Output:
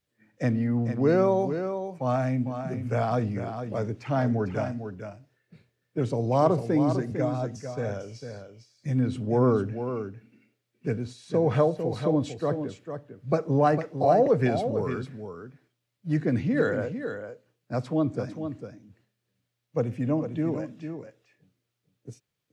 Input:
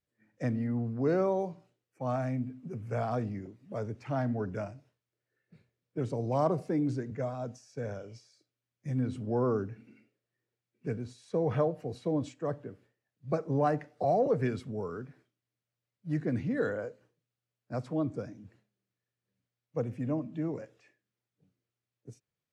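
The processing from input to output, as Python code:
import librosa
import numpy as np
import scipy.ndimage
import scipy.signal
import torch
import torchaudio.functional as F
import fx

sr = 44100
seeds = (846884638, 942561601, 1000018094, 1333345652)

y = fx.peak_eq(x, sr, hz=3500.0, db=3.5, octaves=1.2)
y = y + 10.0 ** (-8.5 / 20.0) * np.pad(y, (int(451 * sr / 1000.0), 0))[:len(y)]
y = F.gain(torch.from_numpy(y), 6.0).numpy()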